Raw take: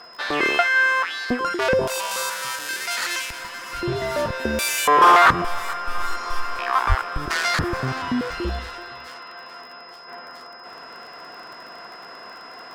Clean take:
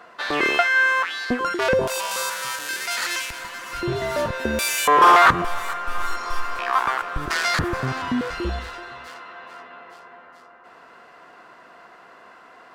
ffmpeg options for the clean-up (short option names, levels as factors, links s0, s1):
-filter_complex "[0:a]adeclick=t=4,bandreject=f=5100:w=30,asplit=3[s0][s1][s2];[s0]afade=t=out:st=6.88:d=0.02[s3];[s1]highpass=f=140:w=0.5412,highpass=f=140:w=1.3066,afade=t=in:st=6.88:d=0.02,afade=t=out:st=7:d=0.02[s4];[s2]afade=t=in:st=7:d=0.02[s5];[s3][s4][s5]amix=inputs=3:normalize=0,asetnsamples=n=441:p=0,asendcmd='10.08 volume volume -6.5dB',volume=1"